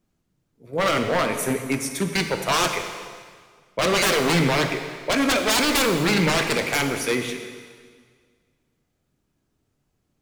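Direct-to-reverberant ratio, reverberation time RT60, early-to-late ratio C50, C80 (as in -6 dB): 5.0 dB, 1.8 s, 6.5 dB, 8.0 dB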